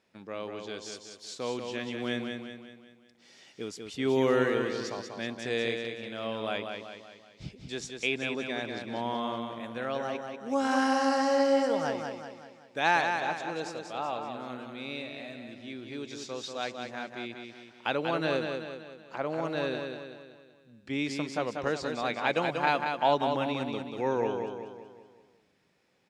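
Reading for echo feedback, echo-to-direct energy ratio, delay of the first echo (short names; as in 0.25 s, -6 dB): 48%, -4.5 dB, 0.189 s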